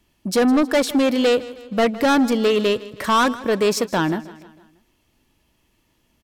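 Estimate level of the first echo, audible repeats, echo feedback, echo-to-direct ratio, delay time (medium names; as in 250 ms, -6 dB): -18.0 dB, 3, 50%, -17.0 dB, 158 ms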